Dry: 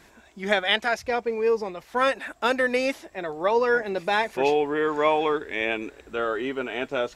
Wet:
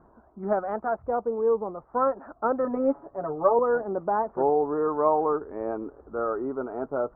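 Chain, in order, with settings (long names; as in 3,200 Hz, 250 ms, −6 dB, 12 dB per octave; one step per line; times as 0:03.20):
Chebyshev low-pass filter 1,300 Hz, order 5
0:02.64–0:03.59: comb filter 7.1 ms, depth 92%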